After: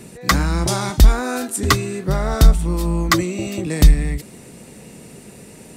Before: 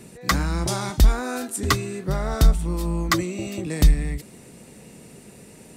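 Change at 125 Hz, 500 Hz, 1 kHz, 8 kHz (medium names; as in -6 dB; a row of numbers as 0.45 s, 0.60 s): +5.0 dB, +5.0 dB, +5.0 dB, +5.0 dB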